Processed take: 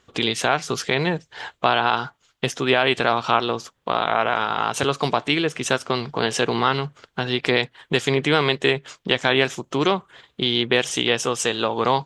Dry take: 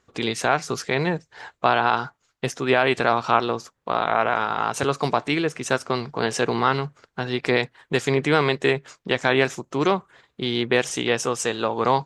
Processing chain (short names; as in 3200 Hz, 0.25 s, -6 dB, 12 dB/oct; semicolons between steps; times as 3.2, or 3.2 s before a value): bell 3200 Hz +8 dB 0.53 oct; in parallel at +2 dB: compressor, threshold -27 dBFS, peak gain reduction 15 dB; on the sum: gain -2.5 dB